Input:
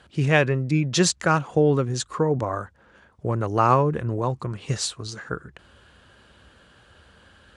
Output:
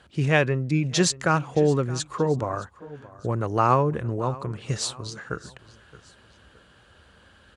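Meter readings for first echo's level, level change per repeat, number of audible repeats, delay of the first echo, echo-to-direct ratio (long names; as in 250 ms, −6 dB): −19.5 dB, −7.5 dB, 2, 620 ms, −19.0 dB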